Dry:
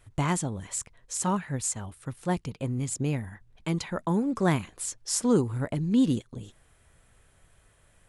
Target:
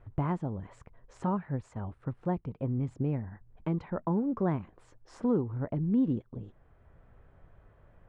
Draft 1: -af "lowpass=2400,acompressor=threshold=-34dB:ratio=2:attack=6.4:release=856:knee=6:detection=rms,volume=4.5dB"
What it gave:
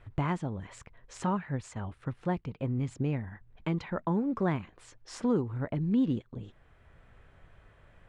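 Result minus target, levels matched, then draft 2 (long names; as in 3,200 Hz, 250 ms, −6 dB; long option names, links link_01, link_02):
2,000 Hz band +7.5 dB
-af "lowpass=1100,acompressor=threshold=-34dB:ratio=2:attack=6.4:release=856:knee=6:detection=rms,volume=4.5dB"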